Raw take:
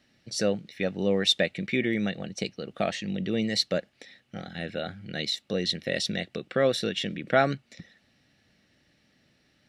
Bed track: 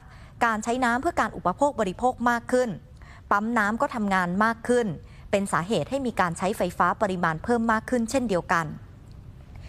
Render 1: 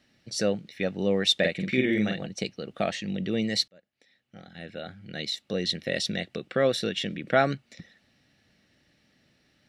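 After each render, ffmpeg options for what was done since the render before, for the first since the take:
-filter_complex "[0:a]asettb=1/sr,asplit=3[s0][s1][s2];[s0]atrim=end=1.394[s3];[s1]atrim=start=1.39:end=2.27,asetpts=PTS-STARTPTS,afade=t=in:d=0.004:c=qsin,afade=t=out:st=0.876:d=0.004:c=qsin,asplit=2[s4][s5];[s5]adelay=47,volume=0.708[s6];[s4][s6]amix=inputs=2:normalize=0,atrim=end_sample=38808[s7];[s2]atrim=start=2.266[s8];[s3][s7]acrossfade=d=0.004:c1=hsin:c2=qsin[s9];[s9][s8]acrossfade=d=0.004:c1=qsin:c2=hsin,asplit=2[s10][s11];[s10]atrim=end=3.68,asetpts=PTS-STARTPTS,afade=t=out:st=3.676:d=0.004:c=hsin[s12];[s11]atrim=start=3.68,asetpts=PTS-STARTPTS,afade=t=in:d=2.04[s13];[s12][s13]concat=n=2:v=0:a=1"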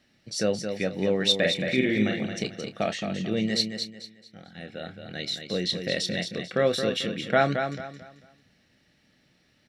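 -filter_complex "[0:a]asplit=2[s0][s1];[s1]adelay=28,volume=0.251[s2];[s0][s2]amix=inputs=2:normalize=0,asplit=2[s3][s4];[s4]aecho=0:1:221|442|663|884:0.447|0.138|0.0429|0.0133[s5];[s3][s5]amix=inputs=2:normalize=0"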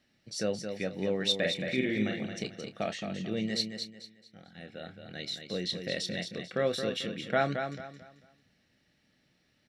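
-af "volume=0.501"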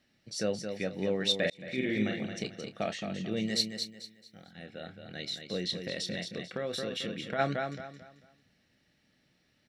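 -filter_complex "[0:a]asettb=1/sr,asplit=3[s0][s1][s2];[s0]atrim=end=3.364[s3];[s1]atrim=start=3.36:end=4.52,asetpts=PTS-STARTPTS,afade=t=in:d=0.004:c=qsin,afade=t=out:st=1.156:d=0.004:c=qsin,highshelf=f=7500:g=11[s4];[s2]atrim=start=4.516[s5];[s3][s4]acrossfade=d=0.004:c1=hsin:c2=qsin[s6];[s6][s5]acrossfade=d=0.004:c1=qsin:c2=hsin,asplit=3[s7][s8][s9];[s7]afade=t=out:st=5.81:d=0.02[s10];[s8]acompressor=threshold=0.0316:ratio=6:attack=3.2:release=140:knee=1:detection=peak,afade=t=in:st=5.81:d=0.02,afade=t=out:st=7.38:d=0.02[s11];[s9]afade=t=in:st=7.38:d=0.02[s12];[s10][s11][s12]amix=inputs=3:normalize=0,asplit=2[s13][s14];[s13]atrim=end=1.5,asetpts=PTS-STARTPTS,afade=t=out:st=1.496:d=0.004:c=hsin[s15];[s14]atrim=start=1.5,asetpts=PTS-STARTPTS,afade=t=in:d=0.41[s16];[s15][s16]concat=n=2:v=0:a=1"

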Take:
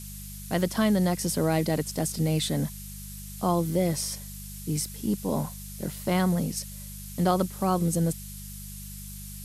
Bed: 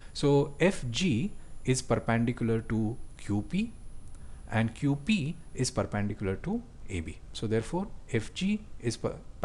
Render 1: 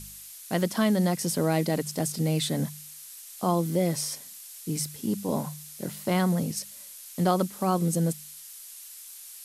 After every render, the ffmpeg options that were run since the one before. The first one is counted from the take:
-af "bandreject=f=50:t=h:w=4,bandreject=f=100:t=h:w=4,bandreject=f=150:t=h:w=4,bandreject=f=200:t=h:w=4"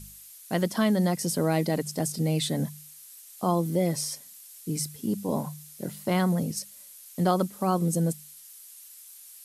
-af "afftdn=nr=6:nf=-45"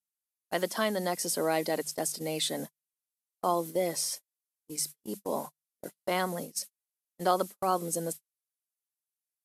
-af "highpass=410,agate=range=0.00562:threshold=0.0141:ratio=16:detection=peak"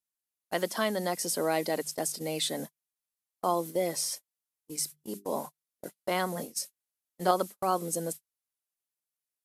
-filter_complex "[0:a]asettb=1/sr,asplit=3[s0][s1][s2];[s0]atrim=end=4.864[s3];[s1]atrim=start=4.86:end=5.31,asetpts=PTS-STARTPTS,afade=t=in:d=0.004:c=qsin,afade=t=out:st=0.446:d=0.004:c=qsin,bandreject=f=50:t=h:w=6,bandreject=f=100:t=h:w=6,bandreject=f=150:t=h:w=6,bandreject=f=200:t=h:w=6,bandreject=f=250:t=h:w=6,bandreject=f=300:t=h:w=6,bandreject=f=350:t=h:w=6,bandreject=f=400:t=h:w=6[s4];[s2]atrim=start=5.306[s5];[s3][s4]acrossfade=d=0.004:c1=hsin:c2=qsin[s6];[s6][s5]acrossfade=d=0.004:c1=qsin:c2=hsin,asettb=1/sr,asplit=3[s7][s8][s9];[s7]atrim=end=6.344[s10];[s8]atrim=start=6.34:end=7.31,asetpts=PTS-STARTPTS,afade=t=in:d=0.004:c=qsin,afade=t=out:st=0.966:d=0.004:c=qsin,asplit=2[s11][s12];[s12]adelay=22,volume=0.447[s13];[s11][s13]amix=inputs=2:normalize=0,atrim=end_sample=42777[s14];[s9]atrim=start=7.306[s15];[s10][s14]acrossfade=d=0.004:c1=hsin:c2=qsin[s16];[s16][s15]acrossfade=d=0.004:c1=qsin:c2=hsin"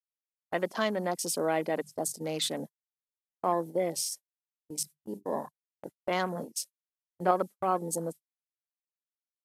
-af "afwtdn=0.00891,agate=range=0.158:threshold=0.00316:ratio=16:detection=peak"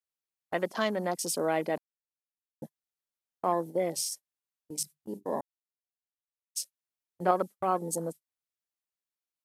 -filter_complex "[0:a]asplit=5[s0][s1][s2][s3][s4];[s0]atrim=end=1.78,asetpts=PTS-STARTPTS,afade=t=out:st=1.776:d=0.004:c=hsin[s5];[s1]atrim=start=1.78:end=2.62,asetpts=PTS-STARTPTS,volume=0[s6];[s2]atrim=start=2.62:end=5.41,asetpts=PTS-STARTPTS,afade=t=in:d=0.004:c=hsin,afade=t=out:st=2.786:d=0.004:c=hsin[s7];[s3]atrim=start=5.41:end=6.55,asetpts=PTS-STARTPTS,volume=0[s8];[s4]atrim=start=6.55,asetpts=PTS-STARTPTS,afade=t=in:d=0.004:c=hsin[s9];[s5][s6][s7][s8][s9]concat=n=5:v=0:a=1"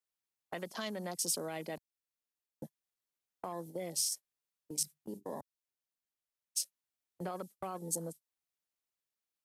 -filter_complex "[0:a]alimiter=limit=0.106:level=0:latency=1:release=21,acrossover=split=140|3000[s0][s1][s2];[s1]acompressor=threshold=0.00631:ratio=2.5[s3];[s0][s3][s2]amix=inputs=3:normalize=0"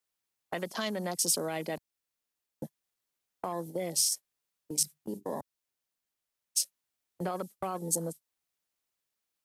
-af "volume=2"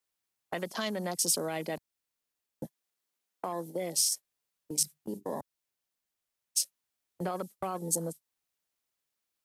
-filter_complex "[0:a]asettb=1/sr,asplit=3[s0][s1][s2];[s0]atrim=end=2.654[s3];[s1]atrim=start=2.65:end=4.01,asetpts=PTS-STARTPTS,afade=t=in:d=0.004:c=qsin,afade=t=out:st=1.356:d=0.004:c=qsin,highpass=160[s4];[s2]atrim=start=4.006[s5];[s3][s4]acrossfade=d=0.004:c1=hsin:c2=qsin[s6];[s6][s5]acrossfade=d=0.004:c1=qsin:c2=hsin"

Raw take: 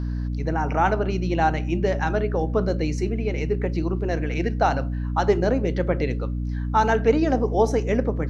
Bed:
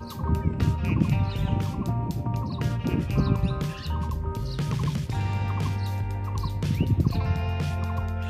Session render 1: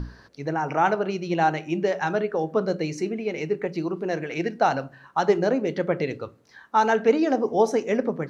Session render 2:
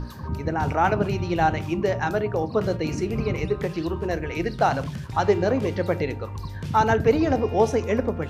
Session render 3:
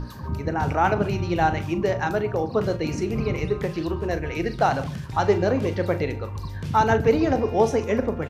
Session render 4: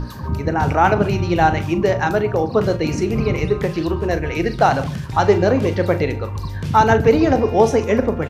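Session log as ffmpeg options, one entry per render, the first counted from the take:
-af "bandreject=f=60:t=h:w=6,bandreject=f=120:t=h:w=6,bandreject=f=180:t=h:w=6,bandreject=f=240:t=h:w=6,bandreject=f=300:t=h:w=6"
-filter_complex "[1:a]volume=0.562[s0];[0:a][s0]amix=inputs=2:normalize=0"
-filter_complex "[0:a]asplit=2[s0][s1];[s1]adelay=40,volume=0.211[s2];[s0][s2]amix=inputs=2:normalize=0,aecho=1:1:140:0.0944"
-af "volume=2,alimiter=limit=0.794:level=0:latency=1"

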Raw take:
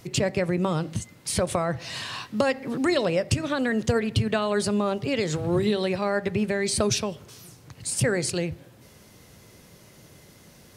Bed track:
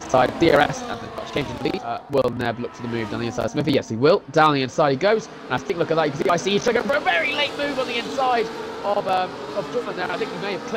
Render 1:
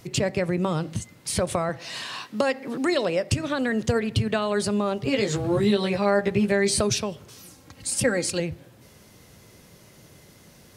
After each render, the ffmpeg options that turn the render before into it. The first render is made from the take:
-filter_complex "[0:a]asettb=1/sr,asplit=3[s0][s1][s2];[s0]atrim=end=1.694[s3];[s1]atrim=start=1.69:end=3.32,asetpts=PTS-STARTPTS,afade=t=in:d=0.004:c=qsin,afade=t=out:st=1.626:d=0.004:c=qsin,highpass=200[s4];[s2]atrim=start=3.316[s5];[s3][s4]acrossfade=d=0.004:c1=hsin:c2=qsin[s6];[s6][s5]acrossfade=d=0.004:c1=qsin:c2=hsin,asettb=1/sr,asplit=3[s7][s8][s9];[s7]atrim=end=5.044[s10];[s8]atrim=start=5.04:end=6.81,asetpts=PTS-STARTPTS,afade=t=in:d=0.004:c=qsin,afade=t=out:st=1.766:d=0.004:c=qsin,asplit=2[s11][s12];[s12]adelay=15,volume=0.794[s13];[s11][s13]amix=inputs=2:normalize=0,atrim=end_sample=78057[s14];[s9]atrim=start=6.806[s15];[s10][s14]acrossfade=d=0.004:c1=hsin:c2=qsin[s16];[s16][s15]acrossfade=d=0.004:c1=qsin:c2=hsin,asettb=1/sr,asplit=3[s17][s18][s19];[s17]atrim=end=7.374[s20];[s18]atrim=start=7.37:end=8.4,asetpts=PTS-STARTPTS,afade=t=in:d=0.004:c=qsin,afade=t=out:st=1.026:d=0.004:c=qsin,aecho=1:1:3.7:0.65,atrim=end_sample=45423[s21];[s19]atrim=start=8.396[s22];[s20][s21]acrossfade=d=0.004:c1=hsin:c2=qsin[s23];[s23][s22]acrossfade=d=0.004:c1=qsin:c2=hsin"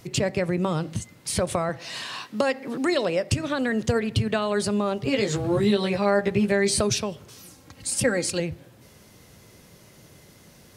-af anull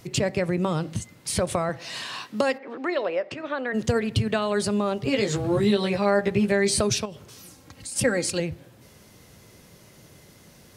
-filter_complex "[0:a]asplit=3[s0][s1][s2];[s0]afade=t=out:st=2.57:d=0.02[s3];[s1]highpass=420,lowpass=2300,afade=t=in:st=2.57:d=0.02,afade=t=out:st=3.73:d=0.02[s4];[s2]afade=t=in:st=3.73:d=0.02[s5];[s3][s4][s5]amix=inputs=3:normalize=0,asettb=1/sr,asplit=3[s6][s7][s8];[s6]atrim=end=7.054[s9];[s7]atrim=start=7.05:end=7.96,asetpts=PTS-STARTPTS,afade=t=in:d=0.004:c=qsin,afade=t=out:st=0.906:d=0.004:c=qsin,acompressor=threshold=0.02:ratio=3:attack=3.2:release=140:knee=1:detection=peak[s10];[s8]atrim=start=7.956[s11];[s9][s10]acrossfade=d=0.004:c1=hsin:c2=qsin[s12];[s12][s11]acrossfade=d=0.004:c1=qsin:c2=hsin"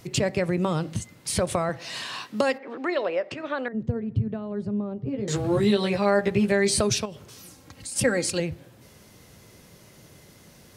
-filter_complex "[0:a]asettb=1/sr,asplit=3[s0][s1][s2];[s0]atrim=end=3.684[s3];[s1]atrim=start=3.68:end=5.28,asetpts=PTS-STARTPTS,afade=t=in:d=0.004:c=qsin,afade=t=out:st=1.596:d=0.004:c=qsin,bandpass=f=130:t=q:w=0.77[s4];[s2]atrim=start=5.276[s5];[s3][s4]acrossfade=d=0.004:c1=hsin:c2=qsin[s6];[s6][s5]acrossfade=d=0.004:c1=qsin:c2=hsin"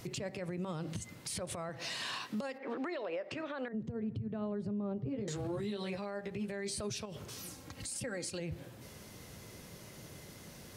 -af "acompressor=threshold=0.0355:ratio=6,alimiter=level_in=2.11:limit=0.0631:level=0:latency=1:release=115,volume=0.473"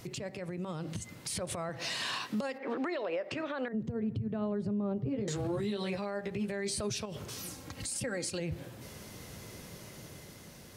-af "dynaudnorm=f=250:g=9:m=1.58"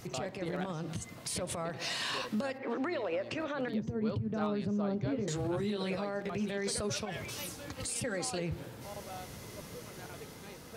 -filter_complex "[1:a]volume=0.0596[s0];[0:a][s0]amix=inputs=2:normalize=0"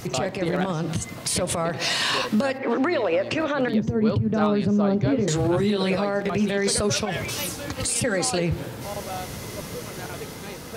-af "volume=3.98"

